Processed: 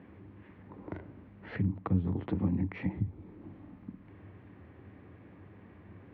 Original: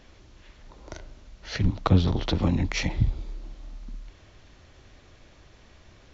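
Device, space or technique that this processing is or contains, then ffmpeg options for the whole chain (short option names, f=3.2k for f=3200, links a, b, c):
bass amplifier: -af "acompressor=threshold=-34dB:ratio=4,highpass=f=84:w=0.5412,highpass=f=84:w=1.3066,equalizer=f=97:t=q:w=4:g=8,equalizer=f=190:t=q:w=4:g=10,equalizer=f=290:t=q:w=4:g=8,equalizer=f=430:t=q:w=4:g=3,equalizer=f=620:t=q:w=4:g=-5,equalizer=f=1.4k:t=q:w=4:g=-5,lowpass=f=2k:w=0.5412,lowpass=f=2k:w=1.3066"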